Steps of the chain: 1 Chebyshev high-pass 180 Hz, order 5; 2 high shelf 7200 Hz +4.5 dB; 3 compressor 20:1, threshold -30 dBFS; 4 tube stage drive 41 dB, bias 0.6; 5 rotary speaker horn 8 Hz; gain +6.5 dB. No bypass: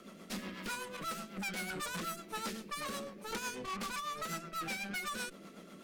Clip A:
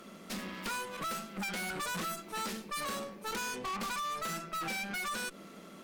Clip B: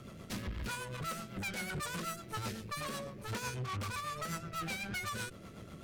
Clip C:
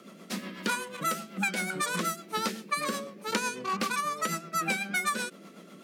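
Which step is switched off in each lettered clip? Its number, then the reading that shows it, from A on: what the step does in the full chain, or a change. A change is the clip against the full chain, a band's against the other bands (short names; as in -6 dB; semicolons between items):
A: 5, crest factor change -7.0 dB; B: 1, 125 Hz band +10.0 dB; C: 4, crest factor change +4.0 dB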